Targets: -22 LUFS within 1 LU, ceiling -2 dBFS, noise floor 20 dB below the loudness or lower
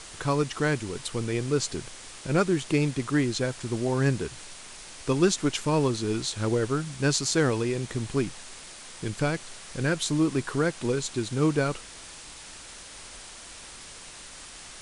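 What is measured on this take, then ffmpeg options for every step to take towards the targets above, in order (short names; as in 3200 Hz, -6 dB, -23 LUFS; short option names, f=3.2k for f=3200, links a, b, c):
noise floor -45 dBFS; noise floor target -48 dBFS; loudness -27.5 LUFS; peak -10.5 dBFS; loudness target -22.0 LUFS
-> -af "afftdn=nr=6:nf=-45"
-af "volume=5.5dB"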